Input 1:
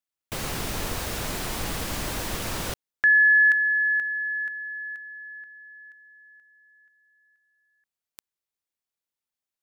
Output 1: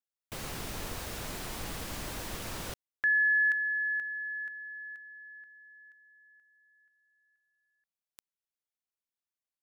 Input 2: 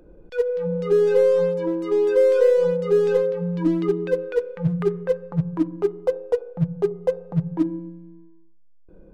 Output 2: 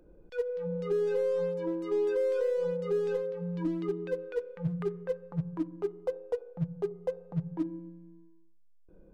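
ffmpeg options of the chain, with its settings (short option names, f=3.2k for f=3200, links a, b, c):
-af "alimiter=limit=-13dB:level=0:latency=1:release=435,volume=-8.5dB"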